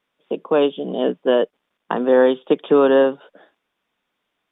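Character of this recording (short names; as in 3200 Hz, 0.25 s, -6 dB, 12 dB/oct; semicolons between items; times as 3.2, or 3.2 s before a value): noise floor -76 dBFS; spectral tilt -3.5 dB/oct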